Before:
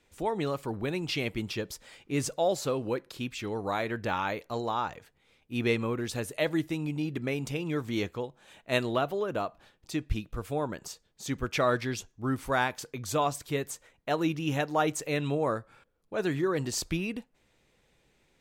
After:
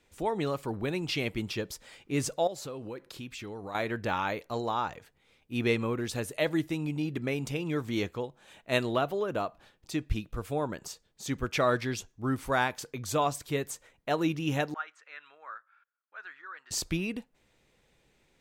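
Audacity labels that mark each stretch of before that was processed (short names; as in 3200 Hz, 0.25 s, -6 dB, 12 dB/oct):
2.470000	3.750000	compressor 3:1, threshold -39 dBFS
14.740000	16.710000	ladder band-pass 1600 Hz, resonance 60%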